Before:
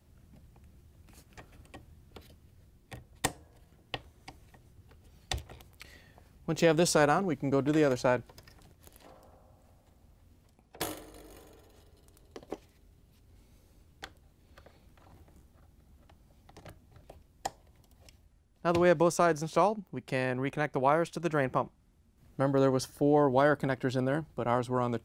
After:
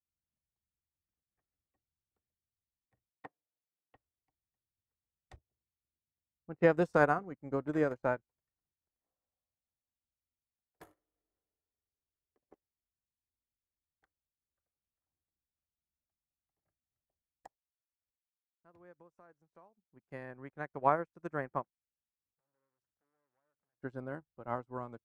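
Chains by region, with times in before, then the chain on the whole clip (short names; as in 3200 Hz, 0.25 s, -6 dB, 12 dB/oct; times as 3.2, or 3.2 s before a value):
3.1–3.95 Bessel high-pass 250 Hz + air absorption 390 m
5.36–6.82 HPF 41 Hz + low-pass opened by the level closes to 310 Hz, open at -23 dBFS + notch 3400 Hz, Q 8.6
17.46–19.92 expander -52 dBFS + compressor 2:1, threshold -43 dBFS
21.64–23.82 compressor 12:1, threshold -38 dBFS + core saturation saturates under 2000 Hz
whole clip: resonant high shelf 2300 Hz -9.5 dB, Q 1.5; upward expander 2.5:1, over -48 dBFS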